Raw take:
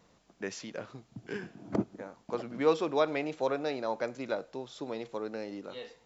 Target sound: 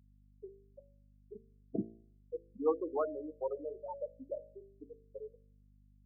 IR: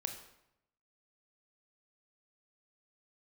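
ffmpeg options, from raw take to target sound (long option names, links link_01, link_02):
-af "afftfilt=real='re*gte(hypot(re,im),0.141)':imag='im*gte(hypot(re,im),0.141)':win_size=1024:overlap=0.75,aeval=exprs='val(0)+0.00126*(sin(2*PI*50*n/s)+sin(2*PI*2*50*n/s)/2+sin(2*PI*3*50*n/s)/3+sin(2*PI*4*50*n/s)/4+sin(2*PI*5*50*n/s)/5)':channel_layout=same,bandreject=frequency=56.24:width_type=h:width=4,bandreject=frequency=112.48:width_type=h:width=4,bandreject=frequency=168.72:width_type=h:width=4,bandreject=frequency=224.96:width_type=h:width=4,bandreject=frequency=281.2:width_type=h:width=4,bandreject=frequency=337.44:width_type=h:width=4,bandreject=frequency=393.68:width_type=h:width=4,bandreject=frequency=449.92:width_type=h:width=4,bandreject=frequency=506.16:width_type=h:width=4,bandreject=frequency=562.4:width_type=h:width=4,bandreject=frequency=618.64:width_type=h:width=4,bandreject=frequency=674.88:width_type=h:width=4,volume=-4.5dB"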